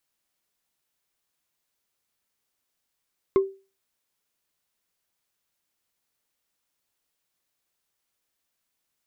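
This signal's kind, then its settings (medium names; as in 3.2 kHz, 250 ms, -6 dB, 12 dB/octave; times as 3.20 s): wood hit, lowest mode 388 Hz, decay 0.32 s, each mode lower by 11 dB, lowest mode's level -12.5 dB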